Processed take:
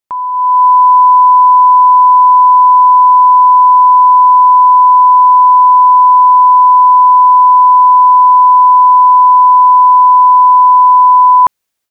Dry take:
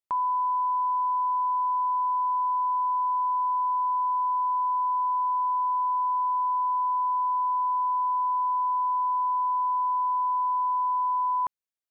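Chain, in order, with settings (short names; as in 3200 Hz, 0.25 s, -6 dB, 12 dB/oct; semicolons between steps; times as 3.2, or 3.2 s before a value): AGC gain up to 14 dB; gain +7 dB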